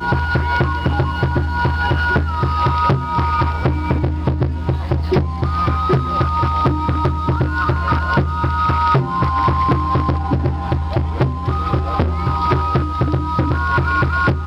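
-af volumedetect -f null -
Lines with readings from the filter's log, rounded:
mean_volume: -17.0 dB
max_volume: -1.2 dB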